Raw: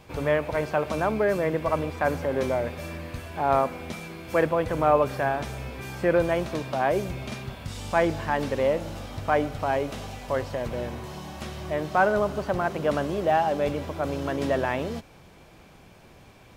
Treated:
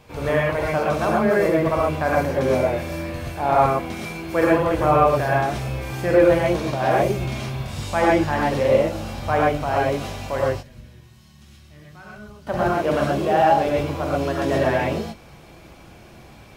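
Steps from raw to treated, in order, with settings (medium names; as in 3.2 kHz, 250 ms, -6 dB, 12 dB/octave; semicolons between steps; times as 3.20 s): 10.49–12.47 s: amplifier tone stack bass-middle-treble 6-0-2; gated-style reverb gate 150 ms rising, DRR -4.5 dB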